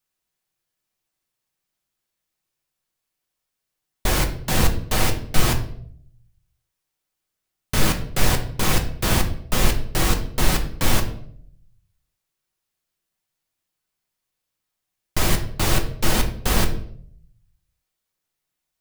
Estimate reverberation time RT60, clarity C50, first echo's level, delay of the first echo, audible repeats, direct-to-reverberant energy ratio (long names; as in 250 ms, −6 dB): 0.60 s, 11.0 dB, no echo audible, no echo audible, no echo audible, 3.5 dB